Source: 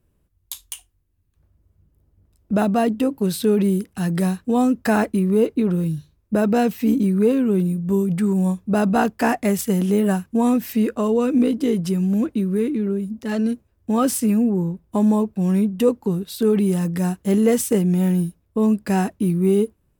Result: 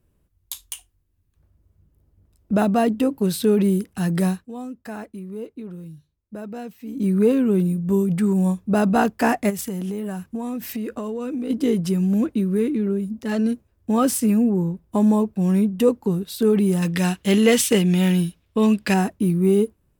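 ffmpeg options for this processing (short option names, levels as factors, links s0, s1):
-filter_complex "[0:a]asplit=3[s0][s1][s2];[s0]afade=t=out:st=9.49:d=0.02[s3];[s1]acompressor=threshold=0.0631:ratio=10:attack=3.2:release=140:knee=1:detection=peak,afade=t=in:st=9.49:d=0.02,afade=t=out:st=11.49:d=0.02[s4];[s2]afade=t=in:st=11.49:d=0.02[s5];[s3][s4][s5]amix=inputs=3:normalize=0,asettb=1/sr,asplit=3[s6][s7][s8];[s6]atrim=end=16.824[s9];[s7]atrim=start=16.82:end=18.94,asetpts=PTS-STARTPTS,afade=t=in:d=0.004:c=qsin,afade=t=out:st=2.116:d=0.004:c=qsin,equalizer=f=3100:w=0.7:g=14.5[s10];[s8]atrim=start=18.936[s11];[s9][s10]acrossfade=d=0.004:c1=hsin:c2=qsin[s12];[s12][s11]acrossfade=d=0.004:c1=qsin:c2=hsin,asplit=3[s13][s14][s15];[s13]atrim=end=4.47,asetpts=PTS-STARTPTS,afade=t=out:st=4.26:d=0.21:c=qsin:silence=0.16788[s16];[s14]atrim=start=4.47:end=6.94,asetpts=PTS-STARTPTS,volume=0.168[s17];[s15]atrim=start=6.94,asetpts=PTS-STARTPTS,afade=t=in:d=0.21:c=qsin:silence=0.16788[s18];[s16][s17][s18]concat=n=3:v=0:a=1"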